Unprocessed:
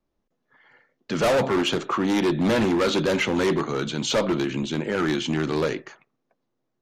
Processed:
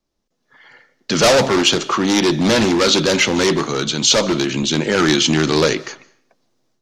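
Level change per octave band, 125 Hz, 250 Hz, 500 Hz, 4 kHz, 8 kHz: +6.5, +6.0, +6.5, +13.0, +16.0 decibels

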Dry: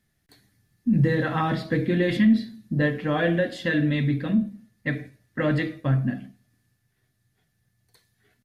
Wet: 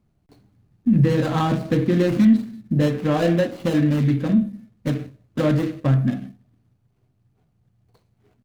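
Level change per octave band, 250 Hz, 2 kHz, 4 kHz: +4.0, −5.0, +1.0 decibels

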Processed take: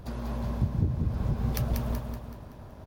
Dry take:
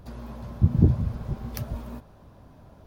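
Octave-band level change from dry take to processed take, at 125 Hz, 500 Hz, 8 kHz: −4.0, −0.5, +3.5 decibels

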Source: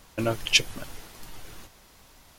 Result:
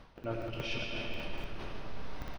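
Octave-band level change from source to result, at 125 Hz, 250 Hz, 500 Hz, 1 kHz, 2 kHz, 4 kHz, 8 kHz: −5.0, −7.0, −6.0, −5.0, −11.0, −15.0, −25.0 decibels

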